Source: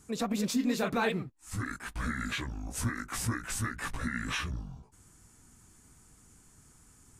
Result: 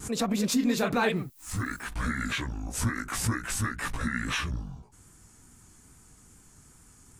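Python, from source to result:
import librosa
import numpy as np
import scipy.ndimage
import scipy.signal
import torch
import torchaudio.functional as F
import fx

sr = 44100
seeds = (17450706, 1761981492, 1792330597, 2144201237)

y = fx.vibrato(x, sr, rate_hz=2.4, depth_cents=41.0)
y = fx.dmg_noise_colour(y, sr, seeds[0], colour='violet', level_db=-64.0, at=(1.15, 1.86), fade=0.02)
y = fx.pre_swell(y, sr, db_per_s=140.0)
y = F.gain(torch.from_numpy(y), 3.5).numpy()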